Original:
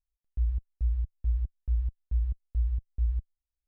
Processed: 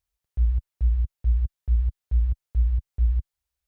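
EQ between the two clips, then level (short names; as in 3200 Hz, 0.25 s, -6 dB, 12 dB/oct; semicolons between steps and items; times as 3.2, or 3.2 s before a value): HPF 57 Hz 12 dB/oct; bell 250 Hz -11 dB 0.69 oct; +9.0 dB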